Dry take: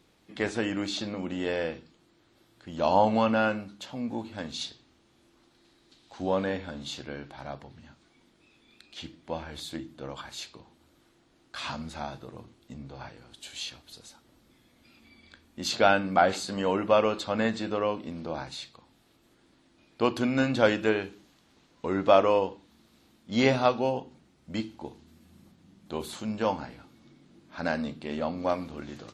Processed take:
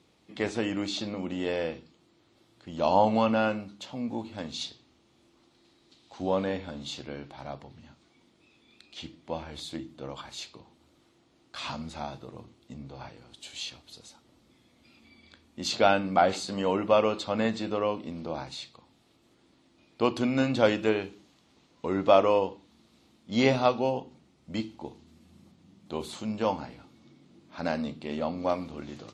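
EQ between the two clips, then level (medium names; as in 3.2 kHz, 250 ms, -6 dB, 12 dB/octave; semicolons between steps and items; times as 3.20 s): high-pass 55 Hz; low-pass 9.1 kHz 12 dB/octave; peaking EQ 1.6 kHz -6 dB 0.37 oct; 0.0 dB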